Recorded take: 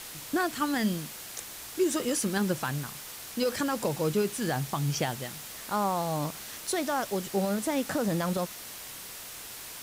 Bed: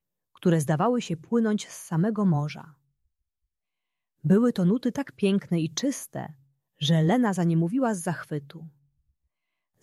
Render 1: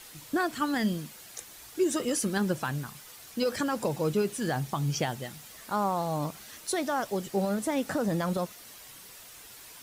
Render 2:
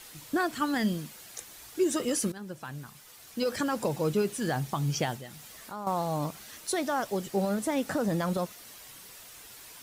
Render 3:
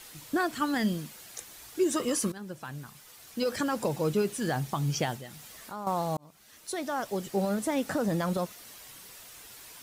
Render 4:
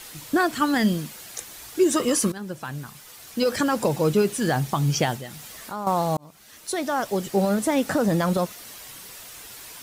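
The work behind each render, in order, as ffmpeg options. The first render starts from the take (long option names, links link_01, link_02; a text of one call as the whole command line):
ffmpeg -i in.wav -af "afftdn=noise_reduction=8:noise_floor=-43" out.wav
ffmpeg -i in.wav -filter_complex "[0:a]asettb=1/sr,asplit=3[link_01][link_02][link_03];[link_01]atrim=end=5.164[link_04];[link_02]atrim=start=5.16:end=5.87,asetpts=PTS-STARTPTS,afade=type=in:duration=0.004:curve=qsin,afade=type=out:start_time=0.706:duration=0.004:curve=qsin,acompressor=threshold=-43dB:ratio=2:attack=3.2:release=140:knee=1:detection=peak[link_05];[link_03]atrim=start=5.866[link_06];[link_04][link_05]acrossfade=duration=0.004:curve1=hsin:curve2=qsin[link_07];[link_07][link_06]acrossfade=duration=0.004:curve1=qsin:curve2=hsin,asplit=2[link_08][link_09];[link_08]atrim=end=2.32,asetpts=PTS-STARTPTS,afade=type=out:start_time=2.316:duration=0.004:curve=hsin:silence=0.141254[link_10];[link_09]atrim=start=2.32,asetpts=PTS-STARTPTS,afade=type=in:duration=1.32:silence=0.141254[link_11];[link_10][link_11]concat=n=2:v=0:a=1" out.wav
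ffmpeg -i in.wav -filter_complex "[0:a]asettb=1/sr,asplit=3[link_01][link_02][link_03];[link_01]atrim=end=1.934[link_04];[link_02]atrim=start=1.93:end=2.33,asetpts=PTS-STARTPTS,afade=type=in:duration=0.004:curve=qsin,afade=type=out:start_time=0.396:duration=0.004:curve=qsin,equalizer=frequency=1100:width=6.3:gain=11.5[link_05];[link_03]atrim=start=2.326[link_06];[link_04][link_05]acrossfade=duration=0.004:curve1=hsin:curve2=qsin[link_07];[link_07][link_06]acrossfade=duration=0.004:curve1=qsin:curve2=hsin,asplit=2[link_08][link_09];[link_08]atrim=end=6.17,asetpts=PTS-STARTPTS,afade=type=out:start_time=6.166:duration=0.004:curve=hsin[link_10];[link_09]atrim=start=6.17,asetpts=PTS-STARTPTS,afade=type=in:duration=1.45:curve=qsin[link_11];[link_10][link_11]concat=n=2:v=0:a=1" out.wav
ffmpeg -i in.wav -af "volume=7dB" out.wav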